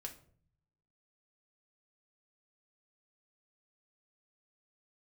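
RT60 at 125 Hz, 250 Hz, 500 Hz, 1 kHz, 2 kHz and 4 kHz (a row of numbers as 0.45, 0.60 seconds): 1.2, 1.0, 0.60, 0.45, 0.40, 0.35 seconds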